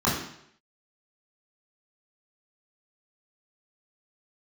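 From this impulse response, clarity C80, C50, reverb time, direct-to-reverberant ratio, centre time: 7.0 dB, 4.0 dB, 0.70 s, -6.0 dB, 45 ms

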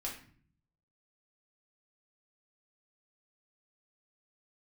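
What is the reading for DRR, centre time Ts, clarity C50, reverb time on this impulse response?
-3.0 dB, 27 ms, 6.5 dB, 0.50 s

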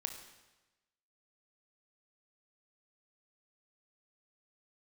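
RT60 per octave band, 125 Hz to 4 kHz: 1.2 s, 1.1 s, 1.1 s, 1.1 s, 1.1 s, 1.0 s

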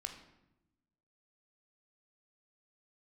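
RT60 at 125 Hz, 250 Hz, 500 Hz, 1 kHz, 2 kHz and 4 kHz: 1.4 s, 1.4 s, 1.0 s, 0.85 s, 0.75 s, 0.60 s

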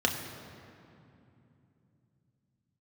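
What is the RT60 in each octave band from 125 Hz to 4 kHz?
5.4 s, 4.3 s, 3.0 s, 2.6 s, 2.3 s, 1.7 s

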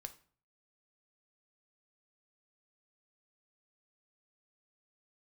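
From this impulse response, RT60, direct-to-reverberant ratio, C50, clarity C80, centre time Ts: 0.45 s, 8.0 dB, 15.5 dB, 20.0 dB, 5 ms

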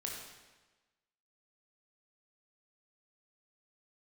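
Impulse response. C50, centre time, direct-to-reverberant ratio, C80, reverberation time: 1.5 dB, 60 ms, -1.5 dB, 4.0 dB, 1.2 s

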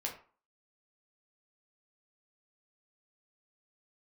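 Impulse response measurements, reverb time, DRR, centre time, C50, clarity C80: 0.40 s, -1.0 dB, 20 ms, 8.5 dB, 13.5 dB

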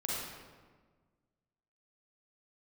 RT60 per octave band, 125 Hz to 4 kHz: 1.9 s, 1.9 s, 1.6 s, 1.4 s, 1.2 s, 0.95 s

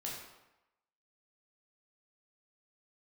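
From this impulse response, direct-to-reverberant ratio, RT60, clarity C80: -4.5 dB, 0.95 s, 4.5 dB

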